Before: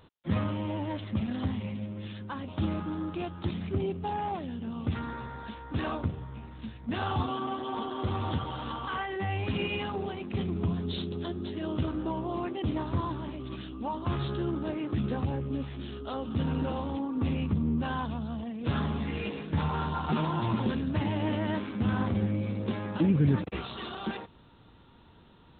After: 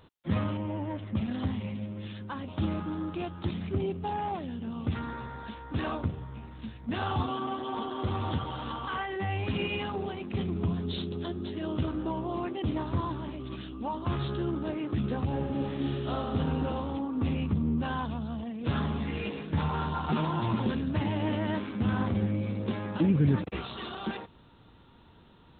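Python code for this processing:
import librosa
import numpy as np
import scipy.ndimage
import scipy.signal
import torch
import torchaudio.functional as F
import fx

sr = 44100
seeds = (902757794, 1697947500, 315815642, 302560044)

y = fx.air_absorb(x, sr, metres=410.0, at=(0.57, 1.15))
y = fx.reverb_throw(y, sr, start_s=15.26, length_s=0.91, rt60_s=2.7, drr_db=-2.5)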